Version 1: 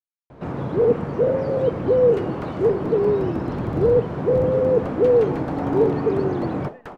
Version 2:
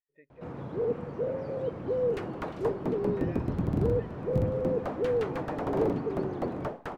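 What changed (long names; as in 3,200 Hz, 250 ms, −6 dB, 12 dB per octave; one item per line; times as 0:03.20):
speech: entry −2.75 s
first sound −12.0 dB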